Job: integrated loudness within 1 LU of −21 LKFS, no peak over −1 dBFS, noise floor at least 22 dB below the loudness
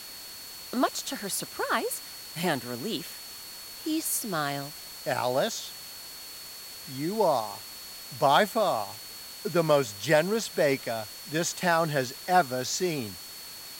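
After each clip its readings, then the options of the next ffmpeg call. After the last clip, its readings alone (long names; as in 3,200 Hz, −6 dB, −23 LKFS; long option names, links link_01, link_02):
interfering tone 4,400 Hz; level of the tone −44 dBFS; background noise floor −43 dBFS; target noise floor −50 dBFS; integrated loudness −28.0 LKFS; sample peak −8.5 dBFS; target loudness −21.0 LKFS
→ -af "bandreject=frequency=4400:width=30"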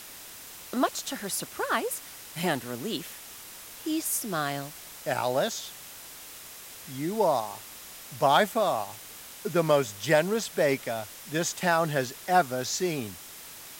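interfering tone none found; background noise floor −45 dBFS; target noise floor −50 dBFS
→ -af "afftdn=noise_reduction=6:noise_floor=-45"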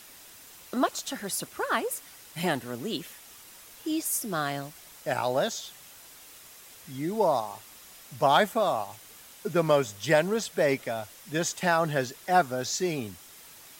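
background noise floor −50 dBFS; integrated loudness −28.0 LKFS; sample peak −8.5 dBFS; target loudness −21.0 LKFS
→ -af "volume=7dB"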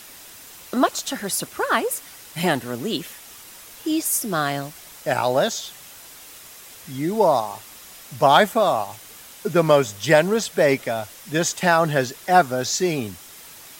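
integrated loudness −21.0 LKFS; sample peak −1.5 dBFS; background noise floor −43 dBFS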